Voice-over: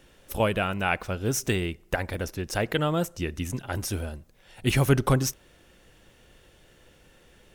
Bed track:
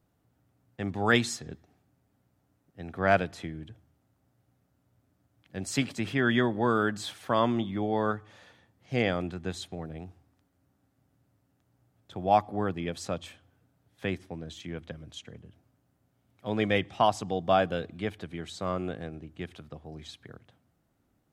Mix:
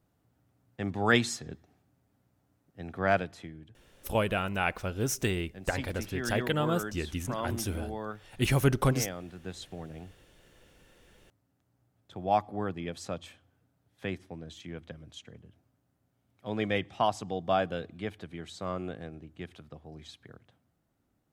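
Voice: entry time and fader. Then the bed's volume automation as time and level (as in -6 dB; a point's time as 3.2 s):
3.75 s, -3.5 dB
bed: 2.9 s -0.5 dB
3.82 s -10 dB
9.24 s -10 dB
9.66 s -3.5 dB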